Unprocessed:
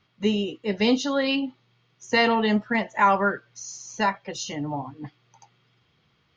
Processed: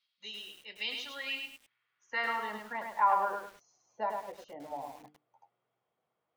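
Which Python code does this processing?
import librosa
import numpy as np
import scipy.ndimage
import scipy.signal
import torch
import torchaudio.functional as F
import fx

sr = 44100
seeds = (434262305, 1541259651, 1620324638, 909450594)

y = fx.hum_notches(x, sr, base_hz=50, count=9)
y = fx.filter_sweep_bandpass(y, sr, from_hz=4200.0, to_hz=660.0, start_s=0.17, end_s=3.65, q=2.2)
y = fx.echo_crushed(y, sr, ms=104, feedback_pct=35, bits=8, wet_db=-4)
y = y * 10.0 ** (-5.5 / 20.0)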